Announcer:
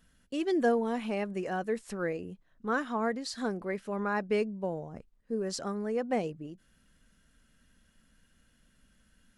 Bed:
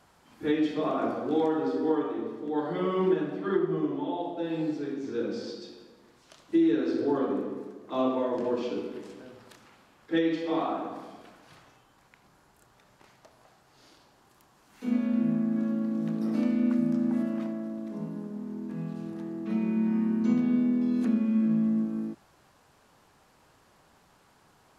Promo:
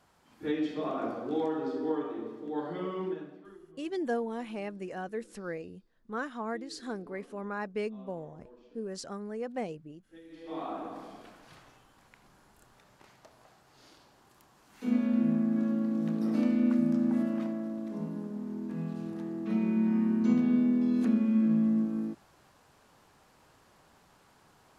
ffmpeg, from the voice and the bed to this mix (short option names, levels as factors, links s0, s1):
-filter_complex "[0:a]adelay=3450,volume=0.562[s0];[1:a]volume=11.9,afade=t=out:st=2.65:d=0.9:silence=0.0794328,afade=t=in:st=10.28:d=0.92:silence=0.0473151[s1];[s0][s1]amix=inputs=2:normalize=0"